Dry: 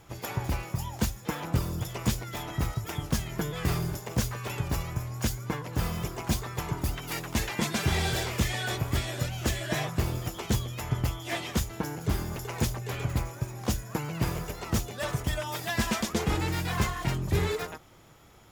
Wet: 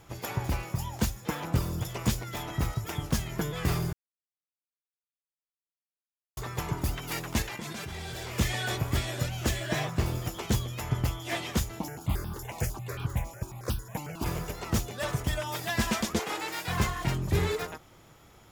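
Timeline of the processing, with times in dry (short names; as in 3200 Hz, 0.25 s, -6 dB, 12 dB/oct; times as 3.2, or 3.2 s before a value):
3.93–6.37 mute
7.42–8.38 level quantiser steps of 19 dB
9.6–10.06 median filter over 3 samples
11.79–14.26 step phaser 11 Hz 420–2000 Hz
16.19–16.68 HPF 500 Hz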